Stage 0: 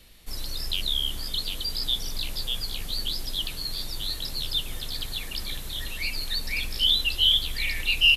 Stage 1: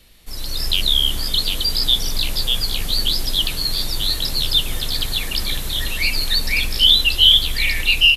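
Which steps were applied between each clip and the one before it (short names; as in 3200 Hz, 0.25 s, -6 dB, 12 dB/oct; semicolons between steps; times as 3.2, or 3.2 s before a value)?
AGC gain up to 8.5 dB; gain +2 dB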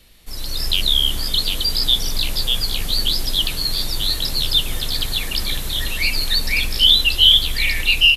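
nothing audible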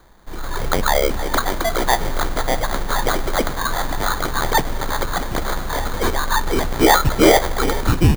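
sample-rate reducer 2700 Hz, jitter 0%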